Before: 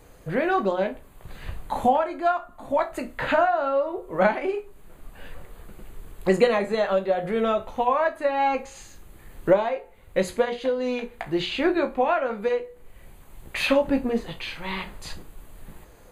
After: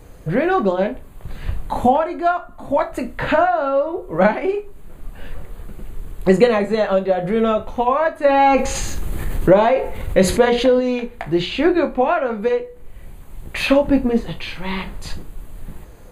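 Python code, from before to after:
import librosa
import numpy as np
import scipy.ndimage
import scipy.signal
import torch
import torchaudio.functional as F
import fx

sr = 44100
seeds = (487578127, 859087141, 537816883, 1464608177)

y = fx.low_shelf(x, sr, hz=310.0, db=7.5)
y = fx.env_flatten(y, sr, amount_pct=50, at=(8.23, 10.79), fade=0.02)
y = y * librosa.db_to_amplitude(3.5)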